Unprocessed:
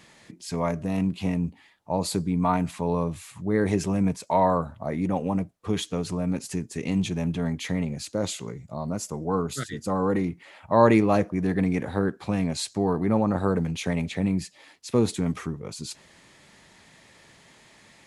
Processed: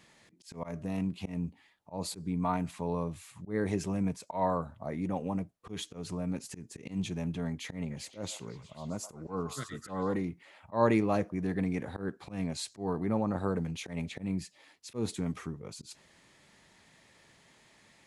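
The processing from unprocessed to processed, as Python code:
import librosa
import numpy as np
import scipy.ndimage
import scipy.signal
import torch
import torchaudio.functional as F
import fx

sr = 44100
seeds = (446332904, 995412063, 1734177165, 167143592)

y = fx.auto_swell(x, sr, attack_ms=122.0)
y = fx.echo_stepped(y, sr, ms=125, hz=890.0, octaves=0.7, feedback_pct=70, wet_db=-6.0, at=(7.9, 10.13), fade=0.02)
y = F.gain(torch.from_numpy(y), -7.5).numpy()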